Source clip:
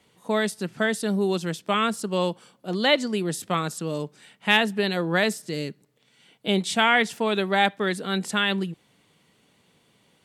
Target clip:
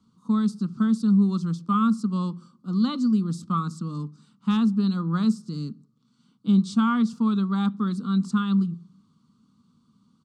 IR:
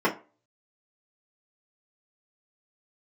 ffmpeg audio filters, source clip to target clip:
-filter_complex "[0:a]firequalizer=gain_entry='entry(100,0);entry(230,8);entry(330,-9);entry(630,-27);entry(1200,4);entry(1800,-29);entry(4400,-6);entry(8700,-14);entry(12000,-26)':delay=0.05:min_phase=1,asplit=2[a][b];[1:a]atrim=start_sample=2205,asetrate=22932,aresample=44100[c];[b][c]afir=irnorm=-1:irlink=0,volume=-35.5dB[d];[a][d]amix=inputs=2:normalize=0"

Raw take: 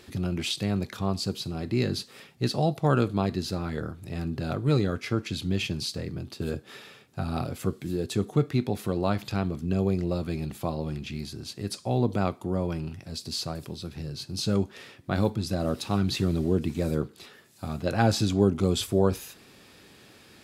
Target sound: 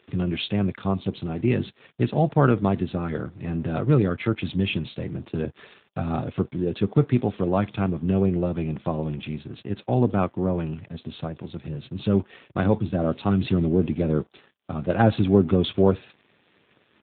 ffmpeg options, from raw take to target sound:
-af "aeval=exprs='sgn(val(0))*max(abs(val(0))-0.00266,0)':c=same,atempo=1.2,volume=5dB" -ar 8000 -c:a libopencore_amrnb -b:a 10200

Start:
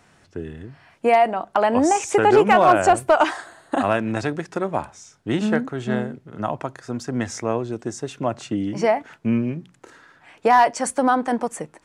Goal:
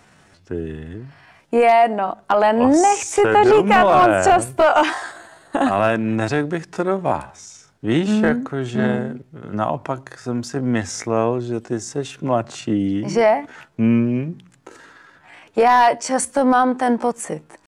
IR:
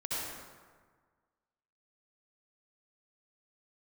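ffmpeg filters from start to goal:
-af "atempo=0.67,apsyclip=11.5dB,volume=-7.5dB"

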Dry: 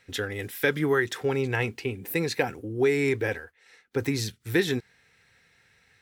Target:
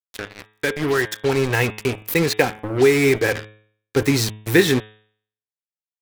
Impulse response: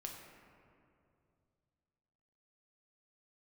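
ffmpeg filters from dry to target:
-af "dynaudnorm=f=440:g=5:m=14dB,acrusher=bits=3:mix=0:aa=0.5,bandreject=f=107.1:t=h:w=4,bandreject=f=214.2:t=h:w=4,bandreject=f=321.3:t=h:w=4,bandreject=f=428.4:t=h:w=4,bandreject=f=535.5:t=h:w=4,bandreject=f=642.6:t=h:w=4,bandreject=f=749.7:t=h:w=4,bandreject=f=856.8:t=h:w=4,bandreject=f=963.9:t=h:w=4,bandreject=f=1.071k:t=h:w=4,bandreject=f=1.1781k:t=h:w=4,bandreject=f=1.2852k:t=h:w=4,bandreject=f=1.3923k:t=h:w=4,bandreject=f=1.4994k:t=h:w=4,bandreject=f=1.6065k:t=h:w=4,bandreject=f=1.7136k:t=h:w=4,bandreject=f=1.8207k:t=h:w=4,bandreject=f=1.9278k:t=h:w=4,bandreject=f=2.0349k:t=h:w=4,bandreject=f=2.142k:t=h:w=4,bandreject=f=2.2491k:t=h:w=4,bandreject=f=2.3562k:t=h:w=4,bandreject=f=2.4633k:t=h:w=4,bandreject=f=2.5704k:t=h:w=4,bandreject=f=2.6775k:t=h:w=4,bandreject=f=2.7846k:t=h:w=4,bandreject=f=2.8917k:t=h:w=4,bandreject=f=2.9988k:t=h:w=4,bandreject=f=3.1059k:t=h:w=4,bandreject=f=3.213k:t=h:w=4,bandreject=f=3.3201k:t=h:w=4,bandreject=f=3.4272k:t=h:w=4,bandreject=f=3.5343k:t=h:w=4,bandreject=f=3.6414k:t=h:w=4,bandreject=f=3.7485k:t=h:w=4"

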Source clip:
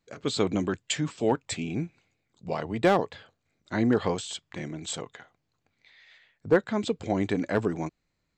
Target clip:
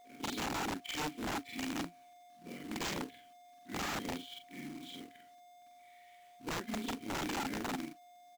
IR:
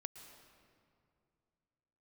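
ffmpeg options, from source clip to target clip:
-filter_complex "[0:a]afftfilt=real='re':imag='-im':win_size=4096:overlap=0.75,asplit=3[a][b][c];[a]bandpass=f=270:t=q:w=8,volume=0dB[d];[b]bandpass=f=2.29k:t=q:w=8,volume=-6dB[e];[c]bandpass=f=3.01k:t=q:w=8,volume=-9dB[f];[d][e][f]amix=inputs=3:normalize=0,aresample=16000,aeval=exprs='(mod(79.4*val(0)+1,2)-1)/79.4':c=same,aresample=44100,aeval=exprs='val(0)+0.000708*sin(2*PI*710*n/s)':c=same,acrusher=bits=2:mode=log:mix=0:aa=0.000001,volume=5.5dB"

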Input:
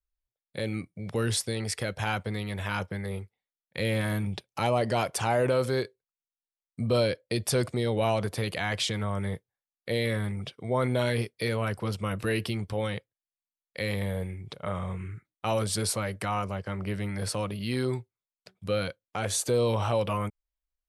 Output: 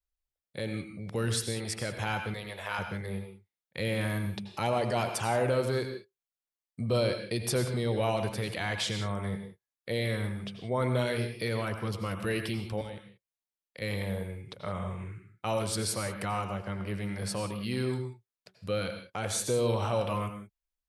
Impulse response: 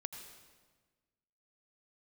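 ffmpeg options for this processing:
-filter_complex "[0:a]asettb=1/sr,asplit=3[a][b][c];[a]atrim=end=2.344[d];[b]atrim=start=2.34:end=2.79,asetpts=PTS-STARTPTS,afade=t=in:d=0.004:c=qsin,afade=t=out:st=0.446:d=0.004:c=qsin,lowshelf=f=370:t=q:w=1.5:g=-12[e];[c]atrim=start=2.786[f];[d][e]acrossfade=d=0.004:c1=hsin:c2=qsin[g];[g][f]acrossfade=d=0.004:c1=qsin:c2=hsin,asettb=1/sr,asplit=3[h][i][j];[h]atrim=end=12.814[k];[i]atrim=start=12.81:end=13.82,asetpts=PTS-STARTPTS,afade=t=in:d=0.004:c=qsin,afade=t=out:st=1.006:d=0.004:c=qsin,acrossover=split=340|2300[l][m][n];[l]acompressor=threshold=-43dB:ratio=4[o];[m]acompressor=threshold=-47dB:ratio=4[p];[n]acompressor=threshold=-51dB:ratio=4[q];[o][p][q]amix=inputs=3:normalize=0[r];[j]atrim=start=13.816[s];[k][r]acrossfade=d=0.004:c1=hsin:c2=qsin[t];[t][s]acrossfade=d=0.004:c1=qsin:c2=hsin[u];[1:a]atrim=start_sample=2205,afade=t=out:st=0.24:d=0.01,atrim=end_sample=11025[v];[u][v]afir=irnorm=-1:irlink=0"

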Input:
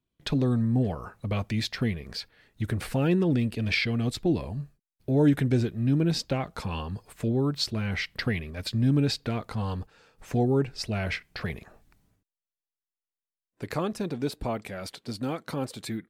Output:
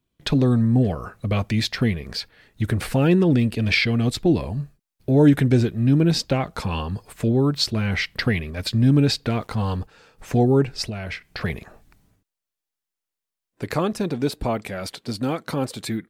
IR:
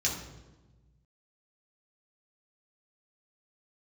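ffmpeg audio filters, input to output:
-filter_complex "[0:a]asettb=1/sr,asplit=3[a][b][c];[a]atrim=end=0.774[d];[b]atrim=start=0.77:end=1.34,asetpts=PTS-STARTPTS,afade=t=in:d=0.004:c=qsin,afade=t=out:st=0.566:d=0.004:c=qsin,equalizer=f=890:t=o:w=0.25:g=-8.5[e];[c]atrim=start=1.336[f];[d][e]acrossfade=d=0.004:c1=hsin:c2=qsin[g];[g][f]acrossfade=d=0.004:c1=qsin:c2=hsin,asettb=1/sr,asplit=3[h][i][j];[h]atrim=end=9.314[k];[i]atrim=start=9.31:end=9.78,asetpts=PTS-STARTPTS,afade=t=in:d=0.004:c=qsin,afade=t=out:st=0.466:d=0.004:c=qsin,aeval=exprs='val(0)*gte(abs(val(0)),0.0015)':c=same[l];[j]atrim=start=9.776[m];[k][l]acrossfade=d=0.004:c1=hsin:c2=qsin[n];[n][m]acrossfade=d=0.004:c1=qsin:c2=hsin,asettb=1/sr,asplit=3[o][p][q];[o]atrim=end=10.844[r];[p]atrim=start=10.84:end=11.41,asetpts=PTS-STARTPTS,afade=t=in:d=0.004:c=qsin,afade=t=out:st=0.566:d=0.004:c=qsin,acompressor=threshold=-34dB:ratio=6[s];[q]atrim=start=11.406[t];[r][s]acrossfade=d=0.004:c1=hsin:c2=qsin[u];[u][t]acrossfade=d=0.004:c1=qsin:c2=hsin,volume=6.5dB"

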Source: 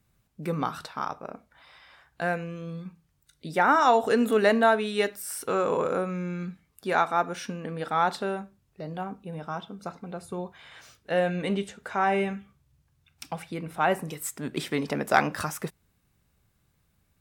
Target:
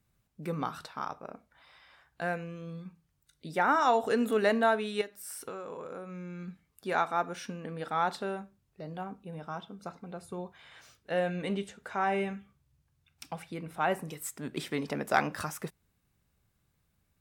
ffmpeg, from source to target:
-filter_complex "[0:a]asettb=1/sr,asplit=3[a][b][c];[a]atrim=end=5.014[d];[b]atrim=start=5.01:end=6.48,asetpts=PTS-STARTPTS,afade=t=in:d=0.004:c=qsin,afade=t=out:st=1.466:d=0.004:c=qsin,acompressor=threshold=-33dB:ratio=10[e];[c]atrim=start=6.476[f];[d][e]acrossfade=d=0.004:c1=hsin:c2=qsin[g];[g][f]acrossfade=d=0.004:c1=qsin:c2=hsin,volume=-5dB"

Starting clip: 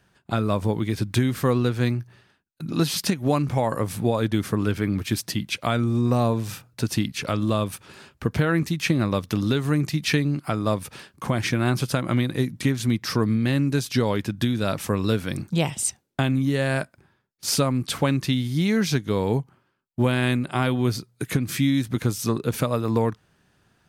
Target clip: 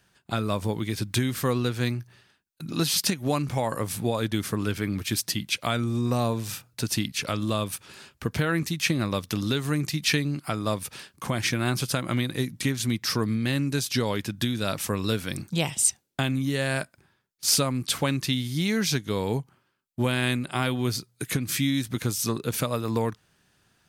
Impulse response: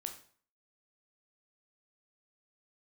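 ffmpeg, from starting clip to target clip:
-af "highshelf=f=2.2k:g=8.5,volume=-4.5dB"

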